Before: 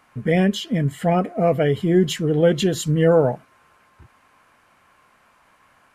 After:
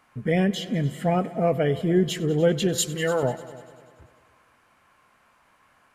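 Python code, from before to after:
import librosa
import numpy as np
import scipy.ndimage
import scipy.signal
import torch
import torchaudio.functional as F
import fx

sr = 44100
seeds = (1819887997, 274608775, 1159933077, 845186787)

y = fx.tilt_shelf(x, sr, db=-9.5, hz=970.0, at=(2.78, 3.23))
y = fx.echo_heads(y, sr, ms=98, heads='all three', feedback_pct=46, wet_db=-21.5)
y = F.gain(torch.from_numpy(y), -4.0).numpy()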